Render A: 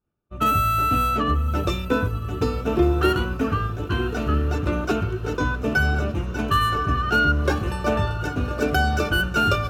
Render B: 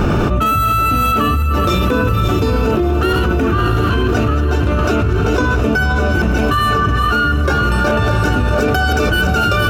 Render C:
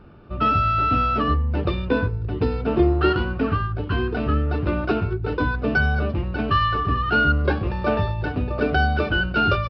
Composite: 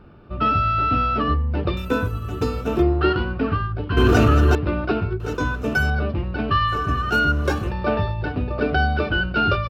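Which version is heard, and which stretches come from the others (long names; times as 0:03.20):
C
0:01.77–0:02.82: punch in from A
0:03.97–0:04.55: punch in from B
0:05.20–0:05.90: punch in from A
0:06.72–0:07.68: punch in from A, crossfade 0.10 s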